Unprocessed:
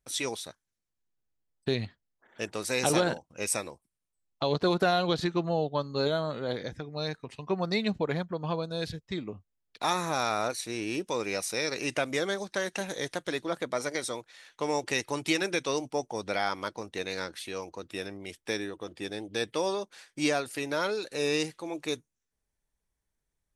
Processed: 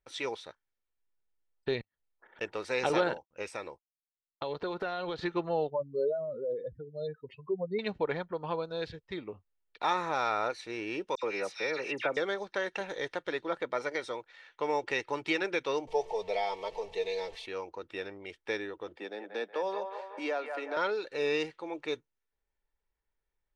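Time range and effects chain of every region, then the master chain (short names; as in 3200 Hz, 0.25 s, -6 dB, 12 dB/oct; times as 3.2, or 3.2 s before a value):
1.81–2.41 compressor 4:1, threshold -48 dBFS + transient shaper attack +6 dB, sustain 0 dB + flipped gate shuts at -42 dBFS, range -30 dB
3.15–5.2 expander -50 dBFS + compressor, threshold -28 dBFS
5.7–7.79 spectral contrast raised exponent 3 + LPF 9400 Hz
11.15–12.17 HPF 120 Hz 24 dB/oct + dispersion lows, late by 78 ms, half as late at 2600 Hz
15.87–17.46 zero-crossing step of -39 dBFS + fixed phaser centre 600 Hz, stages 4 + comb 4.5 ms, depth 75%
18.97–20.77 rippled Chebyshev high-pass 170 Hz, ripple 6 dB + band-limited delay 0.184 s, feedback 46%, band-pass 1100 Hz, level -5 dB + three-band squash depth 40%
whole clip: LPF 2800 Hz 12 dB/oct; bell 110 Hz -9 dB 2.9 oct; comb 2.2 ms, depth 30%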